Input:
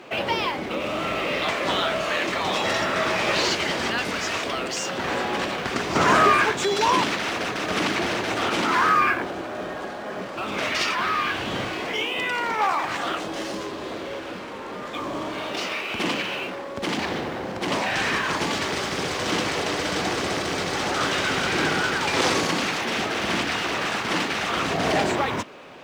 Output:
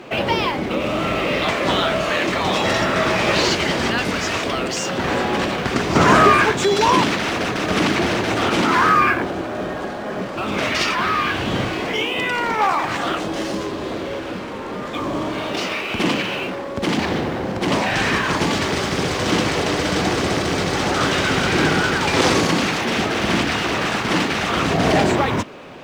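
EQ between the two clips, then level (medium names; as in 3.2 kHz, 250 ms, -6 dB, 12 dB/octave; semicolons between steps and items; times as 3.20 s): bass shelf 300 Hz +8 dB; +3.5 dB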